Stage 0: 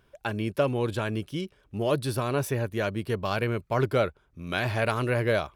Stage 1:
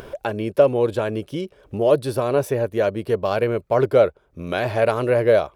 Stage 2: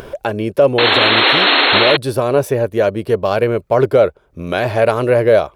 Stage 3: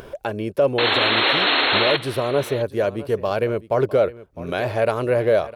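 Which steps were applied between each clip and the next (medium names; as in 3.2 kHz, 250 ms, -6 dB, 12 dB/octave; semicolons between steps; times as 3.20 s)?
peaking EQ 530 Hz +11.5 dB 1.3 oct; upward compressor, threshold -23 dBFS
painted sound noise, 0.78–1.97 s, 250–4300 Hz -16 dBFS; loudness maximiser +6.5 dB; trim -1 dB
delay 656 ms -17 dB; trim -6.5 dB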